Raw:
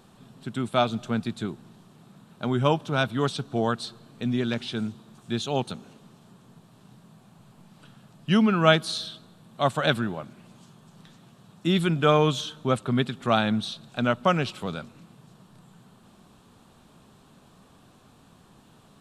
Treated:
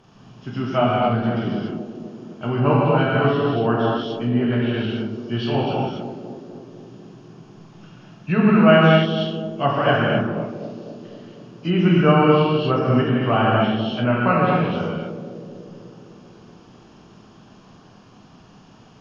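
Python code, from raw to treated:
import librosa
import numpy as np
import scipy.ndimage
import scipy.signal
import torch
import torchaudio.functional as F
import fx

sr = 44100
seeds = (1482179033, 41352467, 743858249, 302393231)

p1 = fx.freq_compress(x, sr, knee_hz=2100.0, ratio=1.5)
p2 = fx.rev_gated(p1, sr, seeds[0], gate_ms=310, shape='flat', drr_db=-5.5)
p3 = fx.env_lowpass_down(p2, sr, base_hz=2600.0, full_db=-17.0)
y = p3 + fx.echo_banded(p3, sr, ms=250, feedback_pct=73, hz=330.0, wet_db=-8, dry=0)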